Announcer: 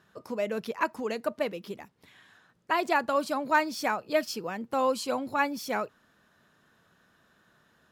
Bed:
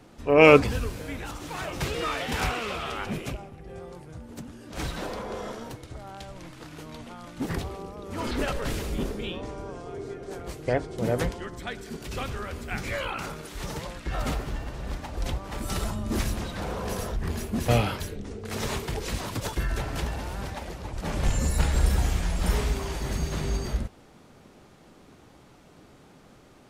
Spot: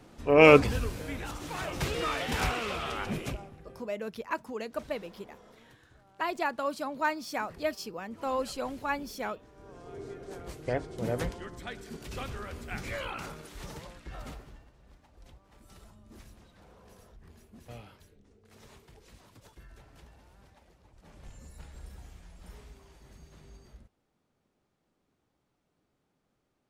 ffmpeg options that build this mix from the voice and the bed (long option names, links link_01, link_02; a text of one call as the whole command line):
ffmpeg -i stem1.wav -i stem2.wav -filter_complex "[0:a]adelay=3500,volume=-5dB[link_01];[1:a]volume=13dB,afade=type=out:start_time=3.31:duration=0.61:silence=0.11885,afade=type=in:start_time=9.52:duration=0.5:silence=0.177828,afade=type=out:start_time=13.17:duration=1.55:silence=0.112202[link_02];[link_01][link_02]amix=inputs=2:normalize=0" out.wav